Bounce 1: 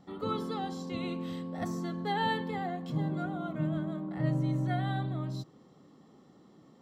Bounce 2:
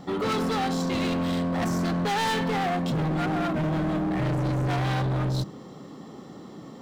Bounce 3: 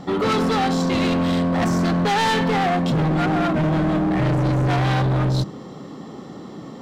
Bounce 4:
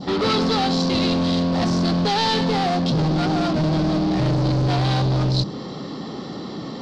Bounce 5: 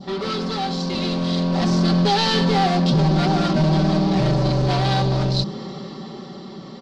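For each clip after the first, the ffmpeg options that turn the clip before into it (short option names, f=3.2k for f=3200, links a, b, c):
-filter_complex "[0:a]bandreject=f=50:t=h:w=6,bandreject=f=100:t=h:w=6,bandreject=f=150:t=h:w=6,bandreject=f=200:t=h:w=6,bandreject=f=250:t=h:w=6,bandreject=f=300:t=h:w=6,bandreject=f=350:t=h:w=6,asplit=2[a][b];[b]alimiter=level_in=4dB:limit=-24dB:level=0:latency=1:release=211,volume=-4dB,volume=2dB[c];[a][c]amix=inputs=2:normalize=0,asoftclip=type=hard:threshold=-33dB,volume=9dB"
-af "highshelf=f=11k:g=-10.5,volume=6.5dB"
-af "aeval=exprs='0.141*(cos(1*acos(clip(val(0)/0.141,-1,1)))-cos(1*PI/2))+0.0224*(cos(5*acos(clip(val(0)/0.141,-1,1)))-cos(5*PI/2))':c=same,adynamicequalizer=threshold=0.0126:dfrequency=1900:dqfactor=0.91:tfrequency=1900:tqfactor=0.91:attack=5:release=100:ratio=0.375:range=3.5:mode=cutabove:tftype=bell,lowpass=f=4.6k:t=q:w=3.4"
-af "aecho=1:1:5.2:0.74,dynaudnorm=f=210:g=13:m=11.5dB,volume=-7.5dB"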